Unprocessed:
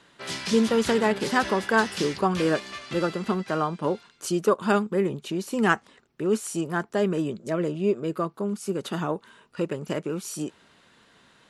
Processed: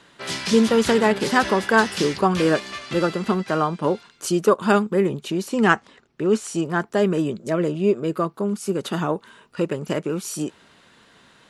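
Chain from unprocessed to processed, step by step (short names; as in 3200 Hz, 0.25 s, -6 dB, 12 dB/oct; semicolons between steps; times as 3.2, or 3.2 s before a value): 5.48–6.81 LPF 7500 Hz 12 dB/oct; gain +4.5 dB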